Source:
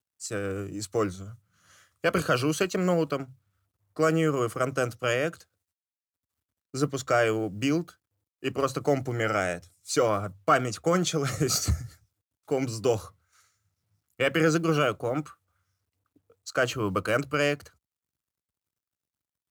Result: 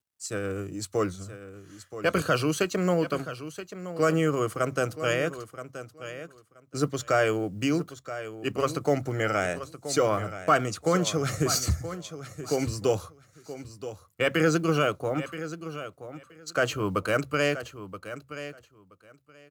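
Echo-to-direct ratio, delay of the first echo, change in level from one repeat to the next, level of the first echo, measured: -12.5 dB, 976 ms, -16.0 dB, -12.5 dB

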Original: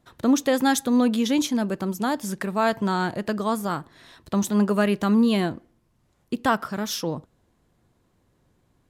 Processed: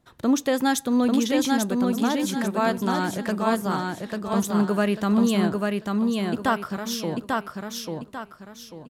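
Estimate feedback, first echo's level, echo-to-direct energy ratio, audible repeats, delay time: 34%, -3.0 dB, -2.5 dB, 4, 843 ms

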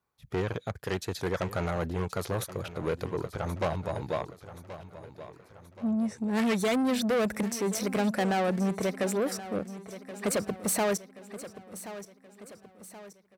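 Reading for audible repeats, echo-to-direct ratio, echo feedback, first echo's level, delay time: 4, -13.0 dB, 48%, -14.0 dB, 1077 ms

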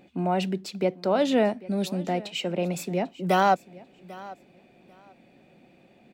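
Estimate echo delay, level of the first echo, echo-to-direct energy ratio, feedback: 794 ms, -20.0 dB, -20.0 dB, 19%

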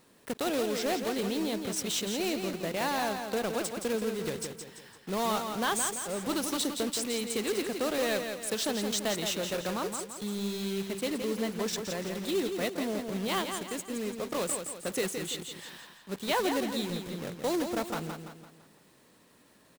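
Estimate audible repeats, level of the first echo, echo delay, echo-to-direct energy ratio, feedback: 4, -6.5 dB, 169 ms, -5.5 dB, 44%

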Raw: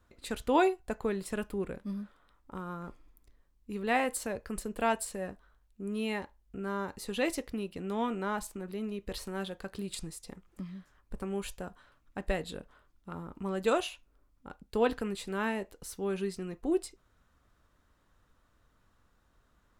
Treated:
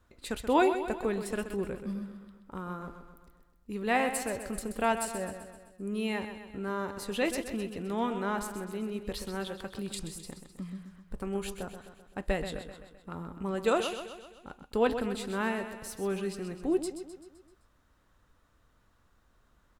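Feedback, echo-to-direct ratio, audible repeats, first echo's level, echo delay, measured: 54%, -8.0 dB, 5, -9.5 dB, 129 ms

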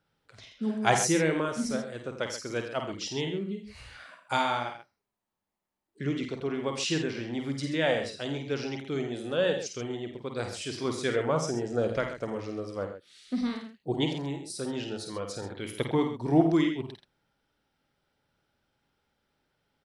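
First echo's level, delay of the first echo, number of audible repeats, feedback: -5.5 dB, 51 ms, 3, no regular repeats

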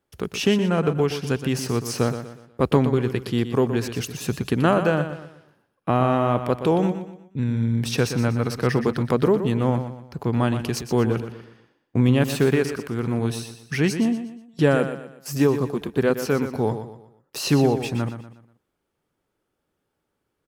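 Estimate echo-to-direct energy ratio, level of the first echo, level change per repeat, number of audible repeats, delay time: -9.5 dB, -10.0 dB, -8.5 dB, 3, 121 ms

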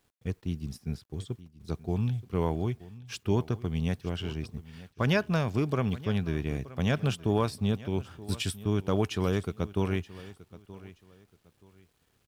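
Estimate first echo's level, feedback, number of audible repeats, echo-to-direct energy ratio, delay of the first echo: -18.0 dB, 26%, 2, -17.5 dB, 926 ms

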